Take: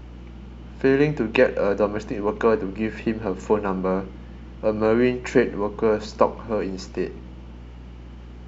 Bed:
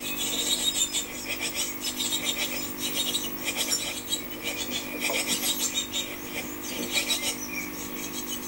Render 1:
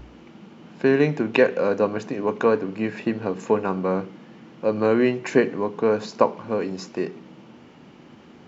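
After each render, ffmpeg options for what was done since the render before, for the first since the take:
ffmpeg -i in.wav -af "bandreject=frequency=60:width_type=h:width=4,bandreject=frequency=120:width_type=h:width=4,bandreject=frequency=180:width_type=h:width=4" out.wav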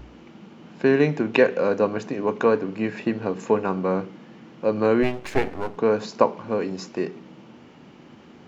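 ffmpeg -i in.wav -filter_complex "[0:a]asplit=3[link_01][link_02][link_03];[link_01]afade=type=out:start_time=5.02:duration=0.02[link_04];[link_02]aeval=exprs='max(val(0),0)':channel_layout=same,afade=type=in:start_time=5.02:duration=0.02,afade=type=out:start_time=5.76:duration=0.02[link_05];[link_03]afade=type=in:start_time=5.76:duration=0.02[link_06];[link_04][link_05][link_06]amix=inputs=3:normalize=0" out.wav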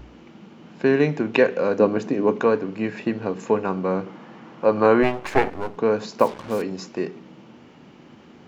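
ffmpeg -i in.wav -filter_complex "[0:a]asettb=1/sr,asplit=3[link_01][link_02][link_03];[link_01]atrim=end=1.784[link_04];[link_02]atrim=start=1.78:end=2.4,asetpts=PTS-STARTPTS,afade=type=in:duration=0.004:curve=qsin,afade=type=out:start_time=0.616:duration=0.004:curve=qsin,equalizer=frequency=290:width=0.8:gain=6.5[link_05];[link_03]atrim=start=2.396[link_06];[link_04][link_05]acrossfade=duration=0.004:curve1=hsin:curve2=qsin[link_07];[link_07][link_06]acrossfade=duration=0.004:curve1=qsin:curve2=hsin,asettb=1/sr,asplit=3[link_08][link_09][link_10];[link_08]atrim=end=4.064[link_11];[link_09]atrim=start=4.06:end=5.5,asetpts=PTS-STARTPTS,afade=type=in:duration=0.004:curve=qsin,afade=type=out:start_time=1.436:duration=0.004:curve=qsin,equalizer=frequency=1000:width_type=o:width=1.8:gain=8.5[link_12];[link_10]atrim=start=5.496[link_13];[link_11][link_12]acrossfade=duration=0.004:curve1=hsin:curve2=qsin[link_14];[link_14][link_13]acrossfade=duration=0.004:curve1=qsin:curve2=hsin,asettb=1/sr,asplit=3[link_15][link_16][link_17];[link_15]atrim=end=6.194[link_18];[link_16]atrim=start=6.19:end=6.62,asetpts=PTS-STARTPTS,afade=type=in:duration=0.004:curve=qsin,afade=type=out:start_time=0.426:duration=0.004:curve=qsin,acrusher=bits=5:mix=0:aa=0.5[link_19];[link_17]atrim=start=6.616[link_20];[link_18][link_19]acrossfade=duration=0.004:curve1=hsin:curve2=qsin[link_21];[link_21][link_20]acrossfade=duration=0.004:curve1=qsin:curve2=hsin" out.wav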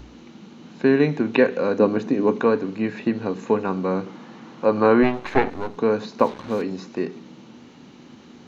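ffmpeg -i in.wav -filter_complex "[0:a]acrossover=split=3300[link_01][link_02];[link_02]acompressor=threshold=-59dB:ratio=4:attack=1:release=60[link_03];[link_01][link_03]amix=inputs=2:normalize=0,equalizer=frequency=250:width_type=o:width=0.33:gain=5,equalizer=frequency=630:width_type=o:width=0.33:gain=-3,equalizer=frequency=4000:width_type=o:width=0.33:gain=10,equalizer=frequency=6300:width_type=o:width=0.33:gain=9" out.wav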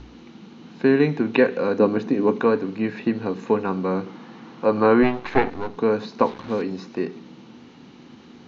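ffmpeg -i in.wav -af "lowpass=frequency=6000:width=0.5412,lowpass=frequency=6000:width=1.3066,bandreject=frequency=590:width=12" out.wav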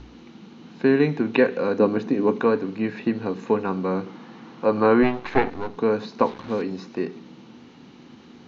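ffmpeg -i in.wav -af "volume=-1dB" out.wav

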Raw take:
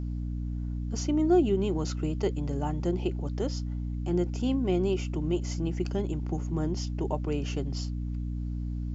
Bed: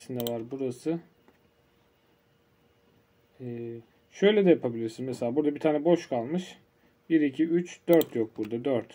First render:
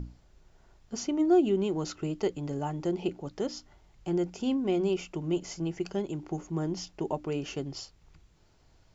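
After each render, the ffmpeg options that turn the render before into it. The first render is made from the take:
ffmpeg -i in.wav -af "bandreject=frequency=60:width_type=h:width=6,bandreject=frequency=120:width_type=h:width=6,bandreject=frequency=180:width_type=h:width=6,bandreject=frequency=240:width_type=h:width=6,bandreject=frequency=300:width_type=h:width=6" out.wav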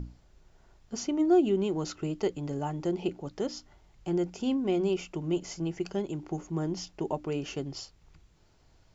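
ffmpeg -i in.wav -af anull out.wav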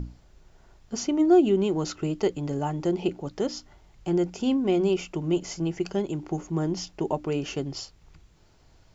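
ffmpeg -i in.wav -af "volume=4.5dB" out.wav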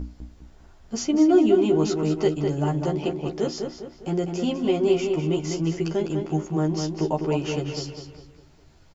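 ffmpeg -i in.wav -filter_complex "[0:a]asplit=2[link_01][link_02];[link_02]adelay=13,volume=-3dB[link_03];[link_01][link_03]amix=inputs=2:normalize=0,asplit=2[link_04][link_05];[link_05]adelay=202,lowpass=frequency=3400:poles=1,volume=-5dB,asplit=2[link_06][link_07];[link_07]adelay=202,lowpass=frequency=3400:poles=1,volume=0.44,asplit=2[link_08][link_09];[link_09]adelay=202,lowpass=frequency=3400:poles=1,volume=0.44,asplit=2[link_10][link_11];[link_11]adelay=202,lowpass=frequency=3400:poles=1,volume=0.44,asplit=2[link_12][link_13];[link_13]adelay=202,lowpass=frequency=3400:poles=1,volume=0.44[link_14];[link_04][link_06][link_08][link_10][link_12][link_14]amix=inputs=6:normalize=0" out.wav

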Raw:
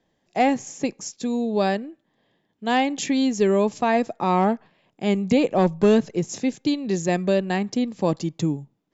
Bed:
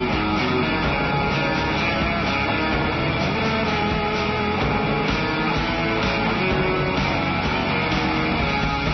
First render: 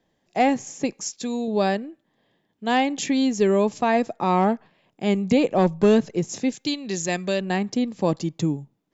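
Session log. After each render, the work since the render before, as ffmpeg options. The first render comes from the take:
ffmpeg -i in.wav -filter_complex "[0:a]asettb=1/sr,asplit=3[link_01][link_02][link_03];[link_01]atrim=end=0.924[link_04];[link_02]atrim=start=0.92:end=1.48,asetpts=PTS-STARTPTS,afade=type=in:duration=0.004:curve=qsin,afade=type=out:start_time=0.556:duration=0.004:curve=qsin,tiltshelf=frequency=810:gain=-3.5[link_05];[link_03]atrim=start=1.476[link_06];[link_04][link_05]acrossfade=duration=0.004:curve1=hsin:curve2=qsin[link_07];[link_07][link_06]acrossfade=duration=0.004:curve1=qsin:curve2=hsin,asettb=1/sr,asplit=3[link_08][link_09][link_10];[link_08]atrim=end=6.524[link_11];[link_09]atrim=start=6.52:end=7.41,asetpts=PTS-STARTPTS,afade=type=in:duration=0.004:curve=qsin,afade=type=out:start_time=0.886:duration=0.004:curve=qsin,tiltshelf=frequency=1400:gain=-5.5[link_12];[link_10]atrim=start=7.406[link_13];[link_11][link_12]acrossfade=duration=0.004:curve1=hsin:curve2=qsin[link_14];[link_14][link_13]acrossfade=duration=0.004:curve1=qsin:curve2=hsin" out.wav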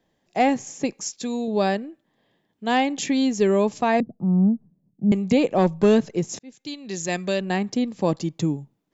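ffmpeg -i in.wav -filter_complex "[0:a]asettb=1/sr,asplit=3[link_01][link_02][link_03];[link_01]atrim=end=4.004[link_04];[link_02]atrim=start=4:end=5.12,asetpts=PTS-STARTPTS,afade=type=in:duration=0.004:curve=qsin,afade=type=out:start_time=1.116:duration=0.004:curve=qsin,lowpass=frequency=190:width_type=q:width=2.2[link_05];[link_03]atrim=start=5.116[link_06];[link_04][link_05]acrossfade=duration=0.004:curve1=hsin:curve2=qsin[link_07];[link_07][link_06]acrossfade=duration=0.004:curve1=qsin:curve2=hsin,asplit=2[link_08][link_09];[link_08]atrim=end=6.39,asetpts=PTS-STARTPTS,afade=type=out:start_time=6.386:duration=0.004:curve=hsin[link_10];[link_09]atrim=start=6.39,asetpts=PTS-STARTPTS,afade=type=in:duration=0.79[link_11];[link_10][link_11]concat=n=2:v=0:a=1" out.wav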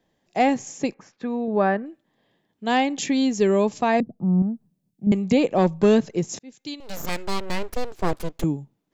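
ffmpeg -i in.wav -filter_complex "[0:a]asettb=1/sr,asplit=3[link_01][link_02][link_03];[link_01]atrim=end=0.944[link_04];[link_02]atrim=start=0.94:end=1.86,asetpts=PTS-STARTPTS,afade=type=in:duration=0.004:curve=qsin,afade=type=out:start_time=0.916:duration=0.004:curve=qsin,lowpass=frequency=1500:width_type=q:width=1.9[link_05];[link_03]atrim=start=1.856[link_06];[link_04][link_05]acrossfade=duration=0.004:curve1=hsin:curve2=qsin[link_07];[link_07][link_06]acrossfade=duration=0.004:curve1=qsin:curve2=hsin,asettb=1/sr,asplit=3[link_08][link_09][link_10];[link_08]atrim=end=4.424[link_11];[link_09]atrim=start=4.42:end=5.07,asetpts=PTS-STARTPTS,afade=type=in:duration=0.004:curve=qsin,afade=type=out:start_time=0.646:duration=0.004:curve=qsin,tiltshelf=frequency=1400:gain=-7.5[link_12];[link_10]atrim=start=5.066[link_13];[link_11][link_12]acrossfade=duration=0.004:curve1=hsin:curve2=qsin[link_14];[link_14][link_13]acrossfade=duration=0.004:curve1=qsin:curve2=hsin,asettb=1/sr,asplit=3[link_15][link_16][link_17];[link_15]atrim=end=6.804[link_18];[link_16]atrim=start=6.8:end=8.44,asetpts=PTS-STARTPTS,afade=type=in:duration=0.004:curve=qsin,afade=type=out:start_time=1.636:duration=0.004:curve=qsin,aeval=exprs='abs(val(0))':channel_layout=same[link_19];[link_17]atrim=start=8.436[link_20];[link_18][link_19]acrossfade=duration=0.004:curve1=hsin:curve2=qsin[link_21];[link_21][link_20]acrossfade=duration=0.004:curve1=qsin:curve2=hsin" out.wav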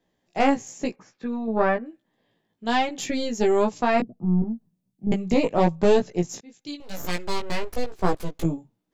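ffmpeg -i in.wav -af "aeval=exprs='0.422*(cos(1*acos(clip(val(0)/0.422,-1,1)))-cos(1*PI/2))+0.188*(cos(2*acos(clip(val(0)/0.422,-1,1)))-cos(2*PI/2))':channel_layout=same,flanger=delay=16:depth=2:speed=1" out.wav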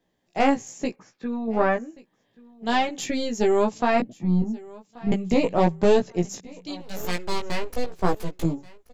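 ffmpeg -i in.wav -af "aecho=1:1:1131|2262:0.0794|0.023" out.wav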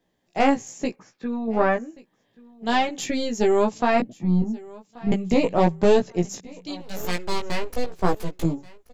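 ffmpeg -i in.wav -af "volume=1dB" out.wav

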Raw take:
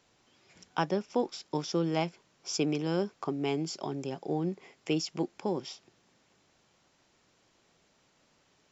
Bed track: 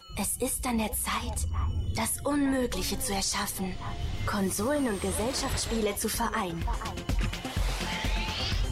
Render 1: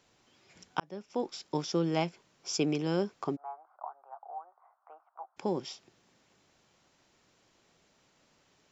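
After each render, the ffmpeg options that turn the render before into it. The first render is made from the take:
ffmpeg -i in.wav -filter_complex "[0:a]asplit=3[link_01][link_02][link_03];[link_01]afade=type=out:start_time=3.35:duration=0.02[link_04];[link_02]asuperpass=centerf=970:order=8:qfactor=1.4,afade=type=in:start_time=3.35:duration=0.02,afade=type=out:start_time=5.36:duration=0.02[link_05];[link_03]afade=type=in:start_time=5.36:duration=0.02[link_06];[link_04][link_05][link_06]amix=inputs=3:normalize=0,asplit=2[link_07][link_08];[link_07]atrim=end=0.8,asetpts=PTS-STARTPTS,afade=type=out:start_time=0.796:duration=0.004:curve=hsin[link_09];[link_08]atrim=start=0.8,asetpts=PTS-STARTPTS,afade=type=in:duration=0.61[link_10];[link_09][link_10]concat=n=2:v=0:a=1" out.wav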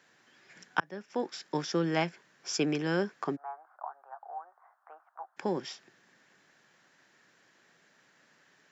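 ffmpeg -i in.wav -af "highpass=frequency=130:width=0.5412,highpass=frequency=130:width=1.3066,equalizer=frequency=1700:width_type=o:width=0.52:gain=14" out.wav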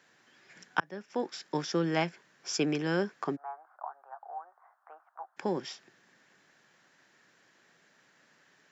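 ffmpeg -i in.wav -af anull out.wav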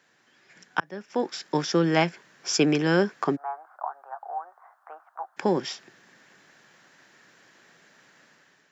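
ffmpeg -i in.wav -af "dynaudnorm=framelen=630:gausssize=3:maxgain=8dB" out.wav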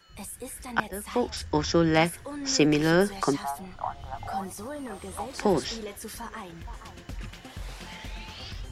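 ffmpeg -i in.wav -i bed.wav -filter_complex "[1:a]volume=-9.5dB[link_01];[0:a][link_01]amix=inputs=2:normalize=0" out.wav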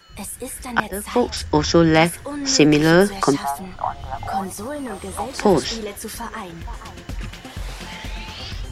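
ffmpeg -i in.wav -af "volume=8dB,alimiter=limit=-2dB:level=0:latency=1" out.wav

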